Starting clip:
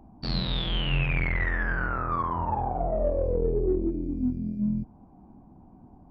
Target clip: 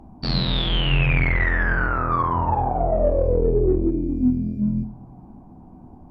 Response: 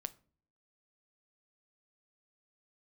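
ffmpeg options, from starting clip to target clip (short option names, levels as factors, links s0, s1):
-filter_complex "[1:a]atrim=start_sample=2205,asetrate=24696,aresample=44100[s0];[0:a][s0]afir=irnorm=-1:irlink=0,volume=2.11"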